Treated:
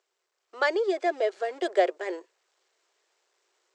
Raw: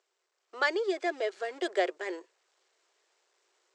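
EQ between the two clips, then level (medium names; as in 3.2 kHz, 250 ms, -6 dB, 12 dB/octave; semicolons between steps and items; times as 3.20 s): dynamic bell 600 Hz, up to +7 dB, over -43 dBFS, Q 1.1; 0.0 dB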